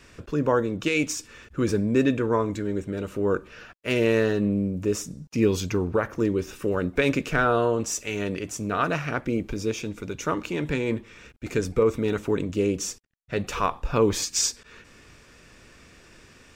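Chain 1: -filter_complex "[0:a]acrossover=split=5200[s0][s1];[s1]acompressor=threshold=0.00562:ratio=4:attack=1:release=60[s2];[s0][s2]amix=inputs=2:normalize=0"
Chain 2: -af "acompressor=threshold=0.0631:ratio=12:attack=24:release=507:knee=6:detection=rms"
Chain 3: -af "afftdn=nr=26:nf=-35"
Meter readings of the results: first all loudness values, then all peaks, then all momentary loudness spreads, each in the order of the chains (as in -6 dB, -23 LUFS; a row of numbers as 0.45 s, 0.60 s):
-26.0 LUFS, -31.5 LUFS, -26.0 LUFS; -10.0 dBFS, -15.0 dBFS, -10.0 dBFS; 9 LU, 18 LU, 9 LU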